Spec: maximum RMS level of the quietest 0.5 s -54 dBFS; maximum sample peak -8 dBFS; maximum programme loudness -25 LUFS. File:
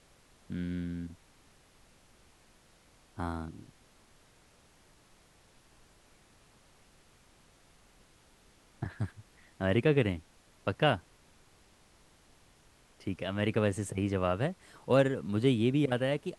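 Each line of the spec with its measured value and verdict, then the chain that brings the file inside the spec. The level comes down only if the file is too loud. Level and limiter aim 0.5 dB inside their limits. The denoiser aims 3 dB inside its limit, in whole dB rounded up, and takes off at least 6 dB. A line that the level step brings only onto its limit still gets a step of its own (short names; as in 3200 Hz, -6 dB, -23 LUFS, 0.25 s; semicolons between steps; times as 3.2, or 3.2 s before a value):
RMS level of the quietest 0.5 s -63 dBFS: OK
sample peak -13.0 dBFS: OK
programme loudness -31.5 LUFS: OK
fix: none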